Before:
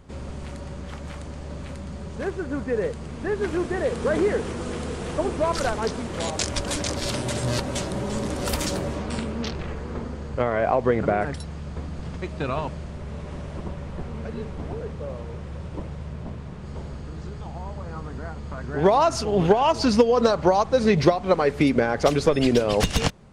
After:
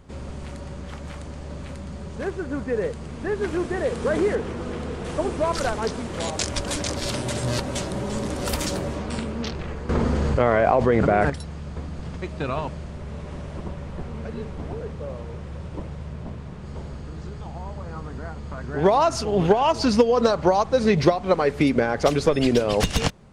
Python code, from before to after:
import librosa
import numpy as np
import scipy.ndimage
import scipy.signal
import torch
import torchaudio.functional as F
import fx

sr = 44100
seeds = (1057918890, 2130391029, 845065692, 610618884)

y = fx.peak_eq(x, sr, hz=13000.0, db=-11.0, octaves=1.9, at=(4.35, 5.05))
y = fx.env_flatten(y, sr, amount_pct=70, at=(9.89, 11.3))